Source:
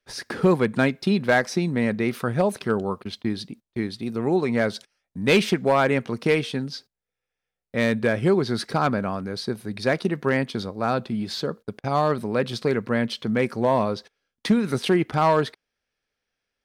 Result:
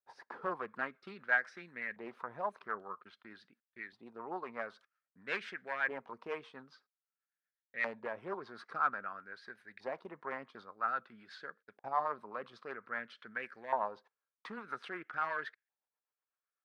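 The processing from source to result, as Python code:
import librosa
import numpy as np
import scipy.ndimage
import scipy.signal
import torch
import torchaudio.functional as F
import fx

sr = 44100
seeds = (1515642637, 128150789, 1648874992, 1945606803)

y = fx.filter_lfo_bandpass(x, sr, shape='saw_up', hz=0.51, low_hz=860.0, high_hz=1800.0, q=4.9)
y = fx.rotary(y, sr, hz=8.0)
y = fx.doppler_dist(y, sr, depth_ms=0.2)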